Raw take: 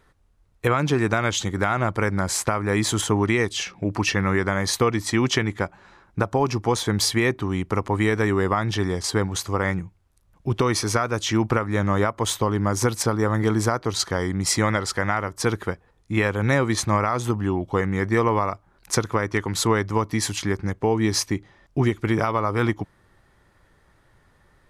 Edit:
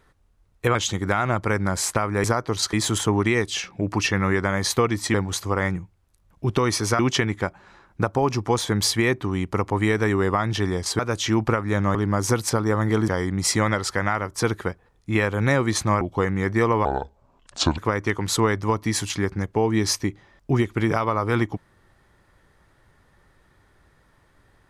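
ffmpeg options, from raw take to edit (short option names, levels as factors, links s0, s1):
-filter_complex "[0:a]asplit=12[s0][s1][s2][s3][s4][s5][s6][s7][s8][s9][s10][s11];[s0]atrim=end=0.752[s12];[s1]atrim=start=1.268:end=2.762[s13];[s2]atrim=start=13.608:end=14.102[s14];[s3]atrim=start=2.758:end=5.172[s15];[s4]atrim=start=9.168:end=11.022[s16];[s5]atrim=start=5.168:end=9.172[s17];[s6]atrim=start=11.018:end=11.982[s18];[s7]atrim=start=12.478:end=13.612[s19];[s8]atrim=start=14.098:end=17.032[s20];[s9]atrim=start=17.568:end=18.414[s21];[s10]atrim=start=18.41:end=19.05,asetpts=PTS-STARTPTS,asetrate=30429,aresample=44100,atrim=end_sample=40904,asetpts=PTS-STARTPTS[s22];[s11]atrim=start=19.046[s23];[s12][s13]acrossfade=d=0.004:c1=hsin:c2=hsin[s24];[s24][s14]acrossfade=d=0.004:c1=hsin:c2=hsin[s25];[s25][s15]acrossfade=d=0.004:c1=hsin:c2=hsin[s26];[s26][s16]acrossfade=d=0.004:c1=hsin:c2=hsin[s27];[s27][s17]acrossfade=d=0.004:c1=hsin:c2=hsin[s28];[s28][s18]acrossfade=d=0.004:c1=hsin:c2=hsin[s29];[s29][s19]acrossfade=d=0.004:c1=hsin:c2=hsin[s30];[s30][s20]acrossfade=d=0.004:c1=hsin:c2=hsin[s31];[s31][s21]acrossfade=d=0.004:c1=hsin:c2=hsin[s32];[s32][s22]acrossfade=d=0.004:c1=hsin:c2=hsin[s33];[s33][s23]acrossfade=d=0.004:c1=hsin:c2=hsin"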